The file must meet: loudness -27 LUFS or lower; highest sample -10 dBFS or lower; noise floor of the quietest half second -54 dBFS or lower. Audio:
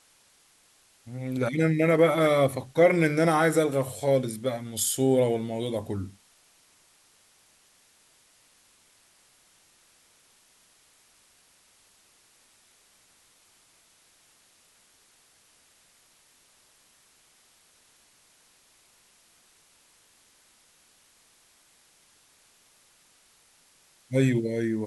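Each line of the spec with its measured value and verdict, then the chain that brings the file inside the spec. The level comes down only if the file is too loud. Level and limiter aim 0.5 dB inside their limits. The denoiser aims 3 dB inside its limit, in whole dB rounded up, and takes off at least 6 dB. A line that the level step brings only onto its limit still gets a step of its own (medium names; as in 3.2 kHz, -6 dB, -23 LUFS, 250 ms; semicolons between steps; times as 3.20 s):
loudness -24.5 LUFS: fail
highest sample -8.5 dBFS: fail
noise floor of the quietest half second -62 dBFS: pass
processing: trim -3 dB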